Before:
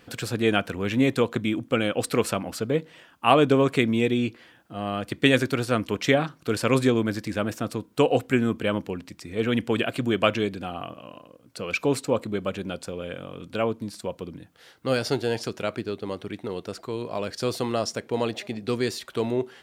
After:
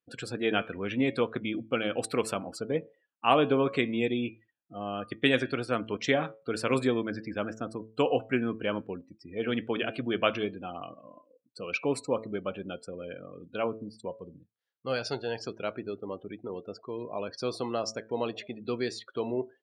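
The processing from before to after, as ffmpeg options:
-filter_complex "[0:a]asettb=1/sr,asplit=3[s0][s1][s2];[s0]atrim=end=14.114[s3];[s1]atrim=start=14.11:end=15.39,asetpts=PTS-STARTPTS,afade=t=in:d=0.004:c=qsin,afade=t=out:st=1.276:d=0.004:c=qsin,equalizer=f=300:w=1.5:g=-6[s4];[s2]atrim=start=15.386[s5];[s3][s4]acrossfade=d=0.004:c1=hsin:c2=qsin[s6];[s6][s5]acrossfade=d=0.004:c1=qsin:c2=hsin,bandreject=f=110.3:t=h:w=4,bandreject=f=220.6:t=h:w=4,bandreject=f=330.9:t=h:w=4,bandreject=f=441.2:t=h:w=4,bandreject=f=551.5:t=h:w=4,bandreject=f=661.8:t=h:w=4,bandreject=f=772.1:t=h:w=4,bandreject=f=882.4:t=h:w=4,bandreject=f=992.7:t=h:w=4,bandreject=f=1103:t=h:w=4,bandreject=f=1213.3:t=h:w=4,bandreject=f=1323.6:t=h:w=4,bandreject=f=1433.9:t=h:w=4,bandreject=f=1544.2:t=h:w=4,bandreject=f=1654.5:t=h:w=4,bandreject=f=1764.8:t=h:w=4,bandreject=f=1875.1:t=h:w=4,bandreject=f=1985.4:t=h:w=4,bandreject=f=2095.7:t=h:w=4,bandreject=f=2206:t=h:w=4,bandreject=f=2316.3:t=h:w=4,bandreject=f=2426.6:t=h:w=4,bandreject=f=2536.9:t=h:w=4,bandreject=f=2647.2:t=h:w=4,bandreject=f=2757.5:t=h:w=4,bandreject=f=2867.8:t=h:w=4,bandreject=f=2978.1:t=h:w=4,bandreject=f=3088.4:t=h:w=4,bandreject=f=3198.7:t=h:w=4,bandreject=f=3309:t=h:w=4,bandreject=f=3419.3:t=h:w=4,bandreject=f=3529.6:t=h:w=4,bandreject=f=3639.9:t=h:w=4,bandreject=f=3750.2:t=h:w=4,bandreject=f=3860.5:t=h:w=4,bandreject=f=3970.8:t=h:w=4,bandreject=f=4081.1:t=h:w=4,bandreject=f=4191.4:t=h:w=4,bandreject=f=4301.7:t=h:w=4,bandreject=f=4412:t=h:w=4,afftdn=nr=35:nf=-38,lowshelf=f=140:g=-9.5,volume=0.631"

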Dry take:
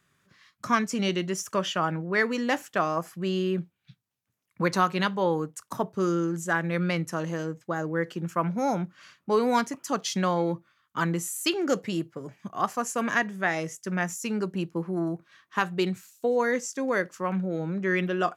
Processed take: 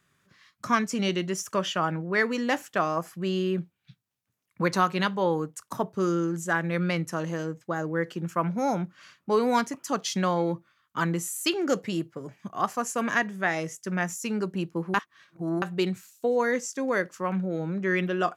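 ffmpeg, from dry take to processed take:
-filter_complex "[0:a]asplit=3[s0][s1][s2];[s0]atrim=end=14.942[s3];[s1]atrim=start=14.938:end=15.622,asetpts=PTS-STARTPTS,areverse[s4];[s2]atrim=start=15.618[s5];[s3][s4]acrossfade=d=0.004:c1=hsin:c2=hsin[s6];[s6][s5]acrossfade=d=0.004:c1=hsin:c2=hsin"

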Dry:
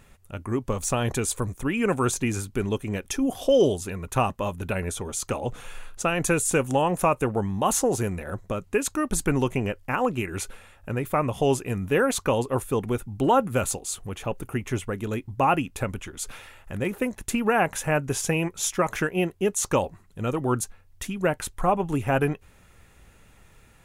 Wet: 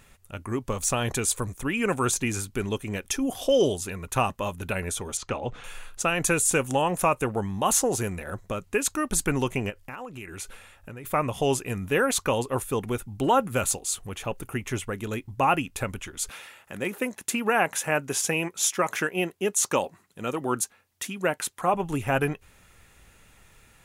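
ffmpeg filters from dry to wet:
-filter_complex "[0:a]asettb=1/sr,asplit=3[s0][s1][s2];[s0]atrim=end=5.174[s3];[s1]atrim=start=5.17:end=5.64,asetpts=PTS-STARTPTS,afade=t=in:d=0.004:c=qsin,afade=t=out:st=0.466:d=0.004:c=qsin,lowpass=3800[s4];[s2]atrim=start=5.636[s5];[s3][s4]acrossfade=d=0.004:c1=hsin:c2=qsin[s6];[s6][s5]acrossfade=d=0.004:c1=qsin:c2=hsin,asplit=3[s7][s8][s9];[s7]afade=t=out:st=9.69:d=0.02[s10];[s8]acompressor=threshold=0.02:ratio=6:attack=3.2:release=140:knee=1:detection=peak,afade=t=in:st=9.69:d=0.02,afade=t=out:st=11.04:d=0.02[s11];[s9]afade=t=in:st=11.04:d=0.02[s12];[s10][s11][s12]amix=inputs=3:normalize=0,asettb=1/sr,asplit=3[s13][s14][s15];[s13]atrim=end=16.294[s16];[s14]atrim=start=16.29:end=21.74,asetpts=PTS-STARTPTS,afade=t=in:d=0.004:c=qsin,afade=t=out:st=5.446:d=0.004:c=qsin,highpass=180[s17];[s15]atrim=start=21.736[s18];[s16][s17]acrossfade=d=0.004:c1=hsin:c2=qsin[s19];[s19][s18]acrossfade=d=0.004:c1=qsin:c2=hsin,tiltshelf=f=1200:g=-3"

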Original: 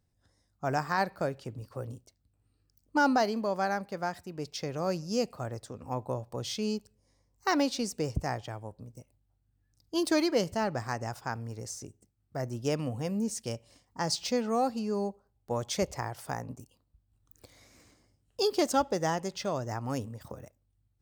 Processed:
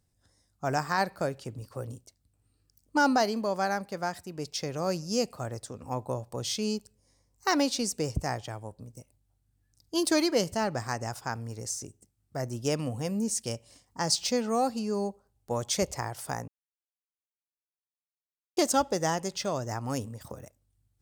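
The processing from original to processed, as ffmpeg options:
-filter_complex "[0:a]asplit=3[s0][s1][s2];[s0]atrim=end=16.48,asetpts=PTS-STARTPTS,afade=t=out:st=16.476:d=0.004:c=hsin[s3];[s1]atrim=start=16.48:end=18.57,asetpts=PTS-STARTPTS,volume=0[s4];[s2]atrim=start=18.57,asetpts=PTS-STARTPTS,afade=t=in:d=0.004:c=hsin[s5];[s3][s4][s5]concat=n=3:v=0:a=1,equalizer=f=9200:t=o:w=1.6:g=7,volume=1.12"

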